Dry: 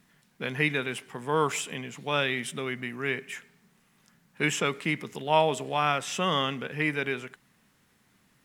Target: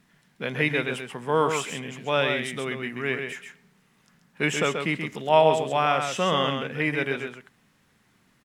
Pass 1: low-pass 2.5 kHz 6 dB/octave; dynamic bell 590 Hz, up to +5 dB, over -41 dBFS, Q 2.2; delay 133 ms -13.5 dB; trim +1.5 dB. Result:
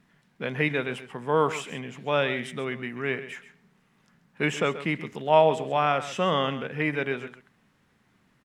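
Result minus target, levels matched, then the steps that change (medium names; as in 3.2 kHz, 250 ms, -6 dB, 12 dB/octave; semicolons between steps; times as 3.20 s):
8 kHz band -5.5 dB; echo-to-direct -7.5 dB
change: low-pass 7 kHz 6 dB/octave; change: delay 133 ms -6 dB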